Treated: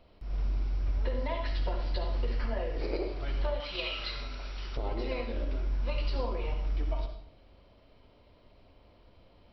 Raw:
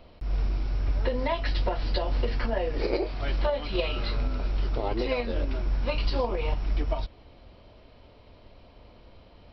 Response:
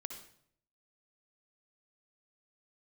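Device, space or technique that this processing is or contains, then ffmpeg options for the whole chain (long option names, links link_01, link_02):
bathroom: -filter_complex "[1:a]atrim=start_sample=2205[link_01];[0:a][link_01]afir=irnorm=-1:irlink=0,asettb=1/sr,asplit=3[link_02][link_03][link_04];[link_02]atrim=end=3.604[link_05];[link_03]atrim=start=3.6:end=4.77,asetpts=PTS-STARTPTS,afade=type=in:duration=0.004:curve=qsin,afade=type=out:start_time=1.166:duration=0.004:curve=qsin,tiltshelf=frequency=900:gain=-8.5[link_06];[link_04]atrim=start=4.766[link_07];[link_05][link_06]acrossfade=duration=0.004:curve1=hsin:curve2=qsin[link_08];[link_08][link_07]acrossfade=duration=0.004:curve1=qsin:curve2=hsin,volume=-4.5dB"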